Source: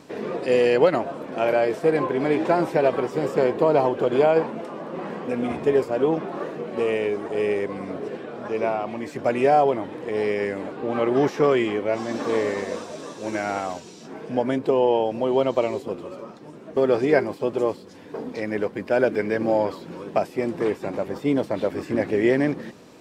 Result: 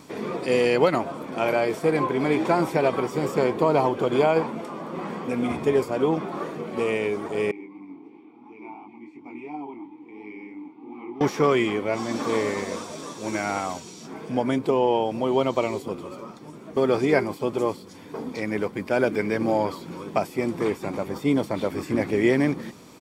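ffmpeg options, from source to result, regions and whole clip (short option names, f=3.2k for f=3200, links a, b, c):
-filter_complex "[0:a]asettb=1/sr,asplit=3[a][b][c];[a]atrim=end=7.514[d];[b]atrim=start=7.51:end=11.21,asetpts=PTS-STARTPTS,afade=t=in:d=0.004:c=qsin,afade=t=out:st=3.696:d=0.004:c=qsin,flanger=delay=19.5:depth=6.4:speed=2.9,asplit=3[e][f][g];[e]bandpass=f=300:t=q:w=8,volume=0dB[h];[f]bandpass=f=870:t=q:w=8,volume=-6dB[i];[g]bandpass=f=2.24k:t=q:w=8,volume=-9dB[j];[h][i][j]amix=inputs=3:normalize=0[k];[c]atrim=start=11.206[l];[d][k]acrossfade=d=0.004:c1=hsin:c2=qsin[m];[m][l]acrossfade=d=0.004:c1=qsin:c2=hsin,highshelf=f=7.3k:g=9,aecho=1:1:0.9:0.33"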